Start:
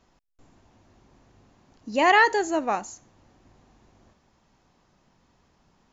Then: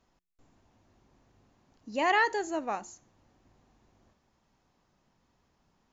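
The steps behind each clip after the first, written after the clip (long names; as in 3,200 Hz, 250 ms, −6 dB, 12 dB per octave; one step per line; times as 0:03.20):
hum removal 177.7 Hz, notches 2
level −7.5 dB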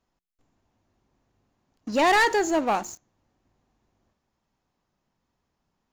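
leveller curve on the samples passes 3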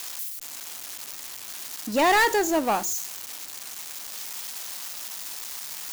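spike at every zero crossing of −23 dBFS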